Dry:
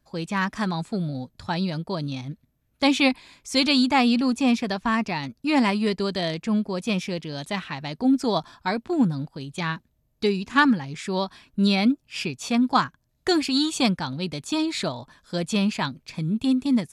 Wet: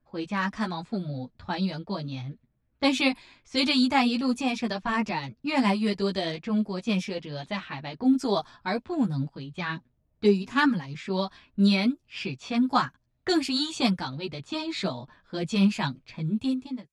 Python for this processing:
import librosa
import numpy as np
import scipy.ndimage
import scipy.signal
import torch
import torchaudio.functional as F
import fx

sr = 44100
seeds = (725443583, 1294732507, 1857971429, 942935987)

y = fx.fade_out_tail(x, sr, length_s=0.6)
y = fx.chorus_voices(y, sr, voices=6, hz=0.82, base_ms=12, depth_ms=3.8, mix_pct=45)
y = fx.env_lowpass(y, sr, base_hz=2100.0, full_db=-21.5)